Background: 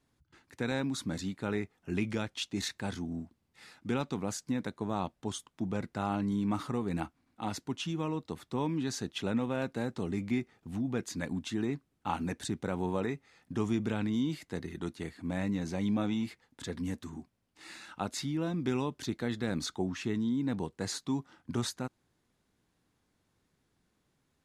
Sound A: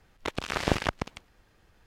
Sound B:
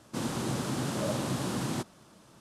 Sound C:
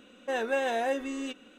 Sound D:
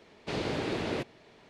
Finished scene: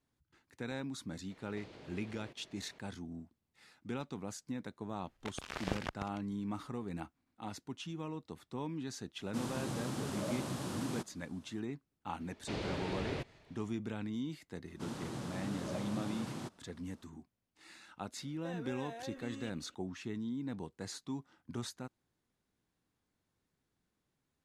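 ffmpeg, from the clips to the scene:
-filter_complex "[4:a]asplit=2[s0][s1];[2:a]asplit=2[s2][s3];[0:a]volume=0.398[s4];[s0]acompressor=threshold=0.00447:ratio=6:attack=3.2:release=140:knee=1:detection=peak[s5];[s1]asubboost=boost=9.5:cutoff=120[s6];[s3]highshelf=f=8200:g=-7.5[s7];[3:a]acompressor=threshold=0.0282:ratio=6:attack=3.2:release=140:knee=1:detection=peak[s8];[s5]atrim=end=1.49,asetpts=PTS-STARTPTS,volume=0.596,afade=t=in:d=0.004:c=hsin,afade=t=out:st=1.486:d=0.004:c=hsin,adelay=1300[s9];[1:a]atrim=end=1.86,asetpts=PTS-STARTPTS,volume=0.251,afade=t=in:d=0.004:c=hsin,afade=t=out:st=1.856:d=0.004:c=hsin,adelay=5000[s10];[s2]atrim=end=2.4,asetpts=PTS-STARTPTS,volume=0.422,afade=t=in:d=0.004:c=hsin,afade=t=out:st=2.396:d=0.004:c=hsin,adelay=9200[s11];[s6]atrim=end=1.49,asetpts=PTS-STARTPTS,volume=0.473,afade=t=in:d=0.004:c=hsin,afade=t=out:st=1.486:d=0.004:c=hsin,adelay=538020S[s12];[s7]atrim=end=2.4,asetpts=PTS-STARTPTS,volume=0.316,afade=t=in:d=0.004:c=hsin,afade=t=out:st=2.396:d=0.004:c=hsin,adelay=14660[s13];[s8]atrim=end=1.58,asetpts=PTS-STARTPTS,volume=0.251,afade=t=in:d=0.004:c=hsin,afade=t=out:st=1.576:d=0.004:c=hsin,adelay=18170[s14];[s4][s9][s10][s11][s12][s13][s14]amix=inputs=7:normalize=0"

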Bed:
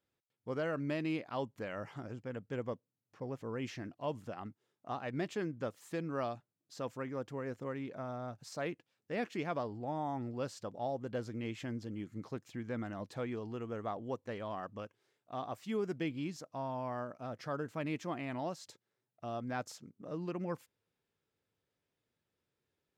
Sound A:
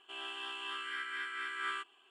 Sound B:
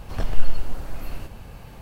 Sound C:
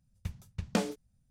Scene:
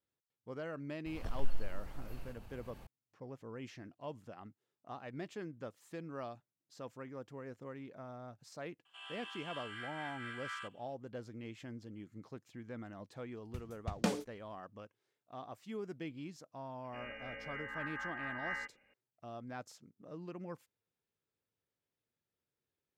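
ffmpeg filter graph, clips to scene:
-filter_complex "[1:a]asplit=2[s0][s1];[0:a]volume=0.447[s2];[2:a]acompressor=mode=upward:threshold=0.0282:ratio=2.5:attack=3.2:release=140:knee=2.83:detection=peak[s3];[s0]highpass=f=700:w=0.5412,highpass=f=700:w=1.3066[s4];[3:a]dynaudnorm=f=210:g=3:m=2.24[s5];[s1]lowpass=f=2700:t=q:w=0.5098,lowpass=f=2700:t=q:w=0.6013,lowpass=f=2700:t=q:w=0.9,lowpass=f=2700:t=q:w=2.563,afreqshift=-3200[s6];[s3]atrim=end=1.81,asetpts=PTS-STARTPTS,volume=0.178,afade=t=in:d=0.004:c=hsin,afade=t=out:st=1.806:d=0.004:c=hsin,adelay=1060[s7];[s4]atrim=end=2.1,asetpts=PTS-STARTPTS,volume=0.473,afade=t=in:d=0.004:c=hsin,afade=t=out:st=2.096:d=0.004:c=hsin,adelay=8850[s8];[s5]atrim=end=1.3,asetpts=PTS-STARTPTS,volume=0.299,afade=t=in:d=0.004:c=hsin,afade=t=out:st=1.296:d=0.004:c=hsin,adelay=13290[s9];[s6]atrim=end=2.1,asetpts=PTS-STARTPTS,volume=0.75,afade=t=in:d=0.004:c=hsin,afade=t=out:st=2.096:d=0.004:c=hsin,adelay=742644S[s10];[s2][s7][s8][s9][s10]amix=inputs=5:normalize=0"

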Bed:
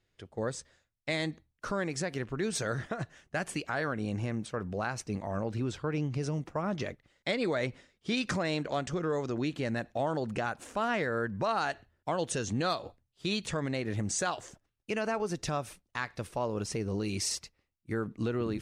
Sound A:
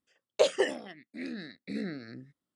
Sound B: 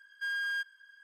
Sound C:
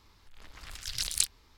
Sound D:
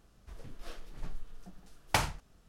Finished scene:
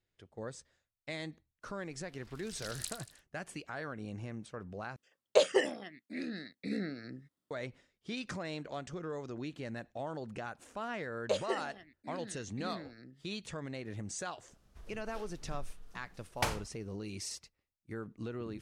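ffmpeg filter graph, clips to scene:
-filter_complex "[1:a]asplit=2[s0][s1];[0:a]volume=0.355[s2];[3:a]aecho=1:1:78|156|234|312|390|468:0.531|0.255|0.122|0.0587|0.0282|0.0135[s3];[s2]asplit=2[s4][s5];[s4]atrim=end=4.964[s6];[s0]atrim=end=2.55,asetpts=PTS-STARTPTS,volume=0.891[s7];[s5]atrim=start=7.506[s8];[s3]atrim=end=1.57,asetpts=PTS-STARTPTS,volume=0.2,afade=t=in:d=0.004:c=hsin,afade=t=out:st=1.566:d=0.004:c=hsin,adelay=1640[s9];[s1]atrim=end=2.55,asetpts=PTS-STARTPTS,volume=0.376,afade=t=in:d=0.004:c=hsin,afade=t=out:st=2.546:d=0.004:c=hsin,adelay=480690S[s10];[4:a]atrim=end=2.48,asetpts=PTS-STARTPTS,volume=0.596,afade=t=in:d=0.004:c=hsin,afade=t=out:st=2.476:d=0.004:c=hsin,adelay=14480[s11];[s6][s7]acrossfade=d=0.004:c1=hsin:c2=hsin[s12];[s12][s8]acrossfade=d=0.004:c1=hsin:c2=hsin[s13];[s13][s9][s10][s11]amix=inputs=4:normalize=0"

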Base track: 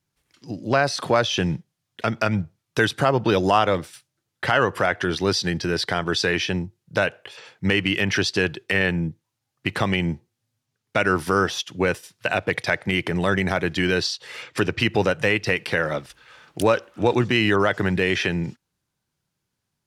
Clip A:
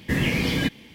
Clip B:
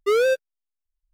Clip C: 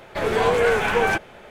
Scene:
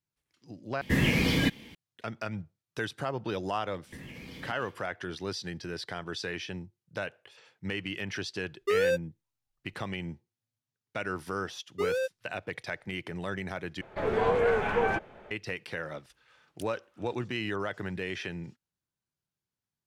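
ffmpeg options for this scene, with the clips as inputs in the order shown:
-filter_complex "[1:a]asplit=2[s0][s1];[2:a]asplit=2[s2][s3];[0:a]volume=0.2[s4];[s1]acompressor=threshold=0.0178:ratio=6:attack=3.2:release=140:knee=1:detection=peak[s5];[s2]acompressor=threshold=0.0891:ratio=6:attack=3.2:release=140:knee=1:detection=peak[s6];[3:a]lowpass=f=1400:p=1[s7];[s4]asplit=3[s8][s9][s10];[s8]atrim=end=0.814[s11];[s0]atrim=end=0.94,asetpts=PTS-STARTPTS,volume=0.794[s12];[s9]atrim=start=1.746:end=13.814[s13];[s7]atrim=end=1.5,asetpts=PTS-STARTPTS,volume=0.531[s14];[s10]atrim=start=15.306[s15];[s5]atrim=end=0.94,asetpts=PTS-STARTPTS,volume=0.422,afade=t=in:d=0.1,afade=t=out:st=0.84:d=0.1,adelay=3840[s16];[s6]atrim=end=1.13,asetpts=PTS-STARTPTS,volume=0.668,afade=t=in:d=0.004:c=hsin,afade=t=out:st=1.126:d=0.004:c=hsin,adelay=8610[s17];[s3]atrim=end=1.13,asetpts=PTS-STARTPTS,volume=0.299,afade=t=in:d=0.004:c=hsin,afade=t=out:st=1.126:d=0.004:c=hsin,adelay=11720[s18];[s11][s12]acrossfade=d=0.004:c1=hsin:c2=hsin[s19];[s19][s13]acrossfade=d=0.004:c1=hsin:c2=hsin[s20];[s20][s14]acrossfade=d=0.004:c1=hsin:c2=hsin[s21];[s21][s15]acrossfade=d=0.004:c1=hsin:c2=hsin[s22];[s22][s16][s17][s18]amix=inputs=4:normalize=0"

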